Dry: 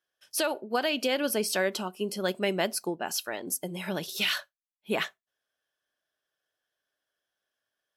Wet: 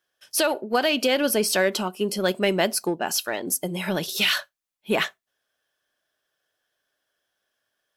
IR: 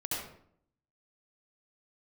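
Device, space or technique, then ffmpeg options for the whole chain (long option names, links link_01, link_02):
parallel distortion: -filter_complex "[0:a]asplit=2[link_01][link_02];[link_02]asoftclip=type=hard:threshold=-31.5dB,volume=-10.5dB[link_03];[link_01][link_03]amix=inputs=2:normalize=0,volume=5dB"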